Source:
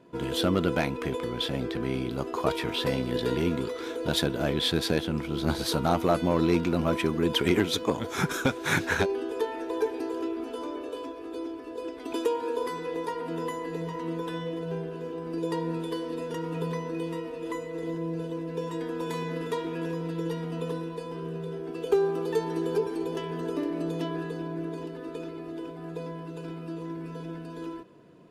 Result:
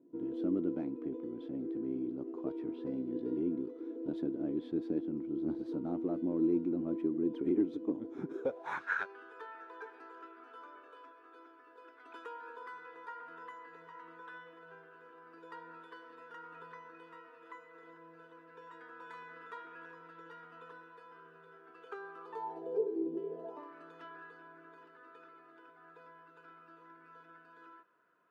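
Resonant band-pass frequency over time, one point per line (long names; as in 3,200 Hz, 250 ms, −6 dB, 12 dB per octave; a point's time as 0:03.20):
resonant band-pass, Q 5.4
0:08.29 300 Hz
0:08.86 1,400 Hz
0:22.18 1,400 Hz
0:23.12 290 Hz
0:23.75 1,400 Hz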